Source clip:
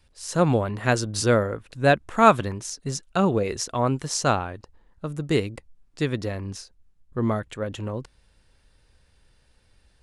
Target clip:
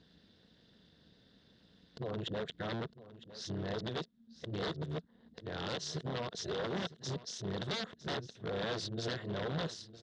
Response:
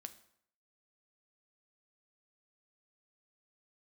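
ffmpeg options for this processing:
-af "areverse,equalizer=f=440:w=4.5:g=6.5,acompressor=threshold=0.0224:ratio=2,tremolo=f=230:d=0.857,aeval=exprs='0.0266*(abs(mod(val(0)/0.0266+3,4)-2)-1)':c=same,highpass=110,equalizer=f=170:t=q:w=4:g=5,equalizer=f=250:t=q:w=4:g=-5,equalizer=f=850:t=q:w=4:g=-6,equalizer=f=1200:t=q:w=4:g=-5,equalizer=f=2400:t=q:w=4:g=-9,equalizer=f=3600:t=q:w=4:g=9,lowpass=f=5200:w=0.5412,lowpass=f=5200:w=1.3066,aecho=1:1:957:0.158,volume=1.33"

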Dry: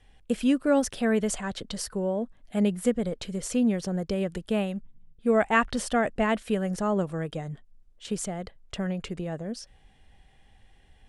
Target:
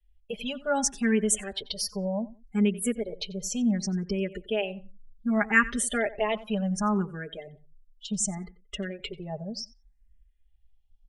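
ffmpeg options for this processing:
-filter_complex "[0:a]afftdn=nr=30:nf=-41,highshelf=f=2200:g=12,aecho=1:1:4.9:1,asplit=2[s0][s1];[s1]adelay=90,lowpass=f=3000:p=1,volume=0.133,asplit=2[s2][s3];[s3]adelay=90,lowpass=f=3000:p=1,volume=0.22[s4];[s2][s4]amix=inputs=2:normalize=0[s5];[s0][s5]amix=inputs=2:normalize=0,asplit=2[s6][s7];[s7]afreqshift=0.67[s8];[s6][s8]amix=inputs=2:normalize=1,volume=0.631"

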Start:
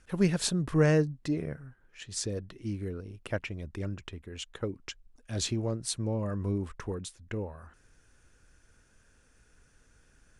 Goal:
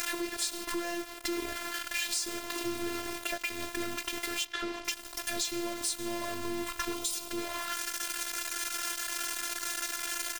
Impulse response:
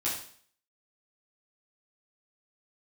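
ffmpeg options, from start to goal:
-filter_complex "[0:a]aeval=exprs='val(0)+0.5*0.0422*sgn(val(0))':c=same,tiltshelf=f=880:g=-3.5,asplit=2[s0][s1];[s1]highpass=f=210:w=0.5412,highpass=f=210:w=1.3066[s2];[1:a]atrim=start_sample=2205[s3];[s2][s3]afir=irnorm=-1:irlink=0,volume=0.133[s4];[s0][s4]amix=inputs=2:normalize=0,acompressor=threshold=0.0251:ratio=8,aeval=exprs='val(0)*gte(abs(val(0)),0.0168)':c=same,asettb=1/sr,asplit=3[s5][s6][s7];[s5]atrim=end=4.454[s8];[s6]atrim=start=4.45:end=4.85,asetpts=PTS-STARTPTS,afade=t=in:d=0.004:c=qsin,afade=t=out:st=0.396:d=0.004:c=qsin,lowpass=4600[s9];[s7]atrim=start=4.846[s10];[s8][s9]acrossfade=d=0.004:c1=hsin:c2=qsin[s11];[s11][s10]acrossfade=d=0.004:c1=qsin:c2=hsin,asettb=1/sr,asplit=3[s12][s13][s14];[s12]atrim=end=6.944[s15];[s13]atrim=start=6.94:end=7.38,asetpts=PTS-STARTPTS,afade=t=in:d=0.004:c=qsin,afade=t=out:st=0.436:d=0.004:c=qsin,equalizer=f=1800:t=o:w=0.51:g=-15[s16];[s14]atrim=start=7.376[s17];[s15][s16]acrossfade=d=0.004:c1=hsin:c2=qsin[s18];[s18][s17]acrossfade=d=0.004:c1=qsin:c2=hsin,aecho=1:1:361:0.075,afftfilt=real='hypot(re,im)*cos(PI*b)':imag='0':win_size=512:overlap=0.75,volume=1.78"

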